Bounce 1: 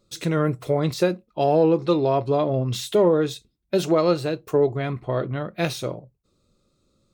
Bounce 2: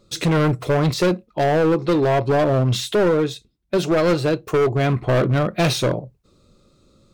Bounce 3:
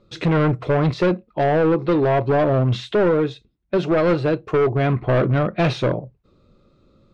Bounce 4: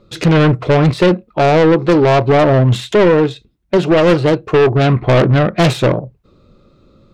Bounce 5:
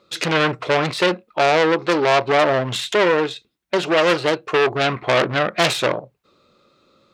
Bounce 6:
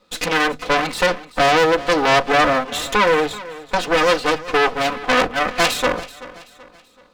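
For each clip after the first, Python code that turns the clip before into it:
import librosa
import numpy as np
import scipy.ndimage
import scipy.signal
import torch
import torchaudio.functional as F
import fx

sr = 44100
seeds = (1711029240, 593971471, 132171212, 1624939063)

y1 = fx.high_shelf(x, sr, hz=7300.0, db=-6.5)
y1 = fx.rider(y1, sr, range_db=4, speed_s=0.5)
y1 = np.clip(10.0 ** (21.0 / 20.0) * y1, -1.0, 1.0) / 10.0 ** (21.0 / 20.0)
y1 = F.gain(torch.from_numpy(y1), 7.0).numpy()
y2 = scipy.signal.sosfilt(scipy.signal.butter(2, 2800.0, 'lowpass', fs=sr, output='sos'), y1)
y3 = fx.self_delay(y2, sr, depth_ms=0.13)
y3 = F.gain(torch.from_numpy(y3), 7.5).numpy()
y4 = fx.highpass(y3, sr, hz=1200.0, slope=6)
y4 = F.gain(torch.from_numpy(y4), 2.0).numpy()
y5 = fx.lower_of_two(y4, sr, delay_ms=4.0)
y5 = fx.hum_notches(y5, sr, base_hz=50, count=3)
y5 = fx.echo_feedback(y5, sr, ms=381, feedback_pct=41, wet_db=-17.5)
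y5 = F.gain(torch.from_numpy(y5), 1.0).numpy()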